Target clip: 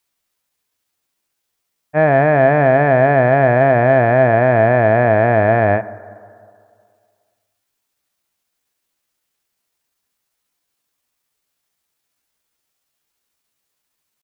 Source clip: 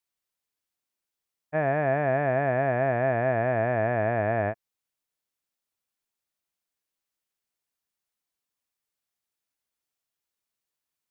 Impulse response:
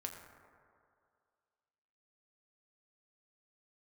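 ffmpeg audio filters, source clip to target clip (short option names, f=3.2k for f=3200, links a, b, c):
-filter_complex "[0:a]acontrast=81,atempo=0.78,asplit=2[a][b];[1:a]atrim=start_sample=2205[c];[b][c]afir=irnorm=-1:irlink=0,volume=-7.5dB[d];[a][d]amix=inputs=2:normalize=0,volume=3.5dB"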